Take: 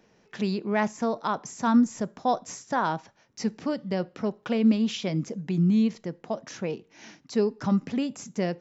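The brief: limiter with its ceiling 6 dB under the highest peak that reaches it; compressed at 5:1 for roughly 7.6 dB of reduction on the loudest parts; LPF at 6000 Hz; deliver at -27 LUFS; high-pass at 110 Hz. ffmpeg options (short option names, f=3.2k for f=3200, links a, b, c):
-af "highpass=110,lowpass=6k,acompressor=threshold=-24dB:ratio=5,volume=6dB,alimiter=limit=-15.5dB:level=0:latency=1"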